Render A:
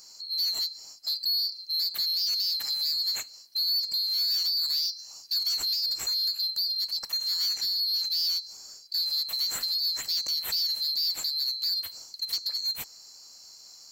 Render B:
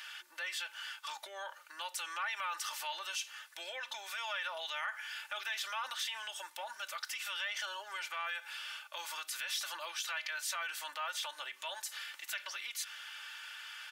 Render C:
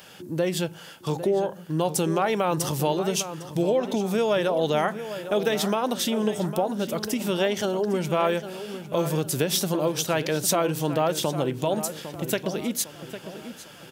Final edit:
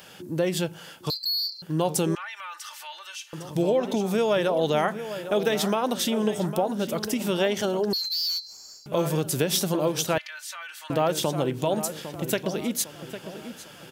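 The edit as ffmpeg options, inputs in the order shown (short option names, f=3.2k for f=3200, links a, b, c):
-filter_complex "[0:a]asplit=2[a][b];[1:a]asplit=2[c][d];[2:a]asplit=5[e][f][g][h][i];[e]atrim=end=1.102[j];[a]atrim=start=1.098:end=1.622[k];[f]atrim=start=1.618:end=2.152[l];[c]atrim=start=2.148:end=3.332[m];[g]atrim=start=3.328:end=7.932[n];[b]atrim=start=7.928:end=8.862[o];[h]atrim=start=8.858:end=10.182[p];[d]atrim=start=10.178:end=10.902[q];[i]atrim=start=10.898[r];[j][k]acrossfade=d=0.004:c1=hsin:c2=hsin[s];[s][l]acrossfade=d=0.004:c1=hsin:c2=hsin[t];[t][m]acrossfade=d=0.004:c1=hsin:c2=hsin[u];[u][n]acrossfade=d=0.004:c1=hsin:c2=hsin[v];[v][o]acrossfade=d=0.004:c1=hsin:c2=hsin[w];[w][p]acrossfade=d=0.004:c1=hsin:c2=hsin[x];[x][q]acrossfade=d=0.004:c1=hsin:c2=hsin[y];[y][r]acrossfade=d=0.004:c1=hsin:c2=hsin"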